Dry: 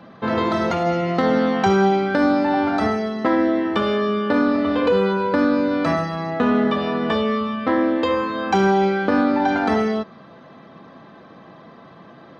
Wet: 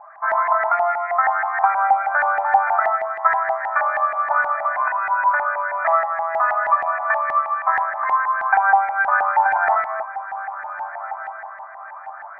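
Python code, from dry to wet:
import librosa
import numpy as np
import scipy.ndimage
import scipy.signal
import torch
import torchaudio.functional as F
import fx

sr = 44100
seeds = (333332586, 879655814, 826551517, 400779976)

y = fx.brickwall_bandpass(x, sr, low_hz=590.0, high_hz=2500.0)
y = fx.echo_diffused(y, sr, ms=1442, feedback_pct=42, wet_db=-13)
y = fx.filter_lfo_lowpass(y, sr, shape='saw_up', hz=6.3, low_hz=800.0, high_hz=1900.0, q=5.5)
y = y * 10.0 ** (-2.0 / 20.0)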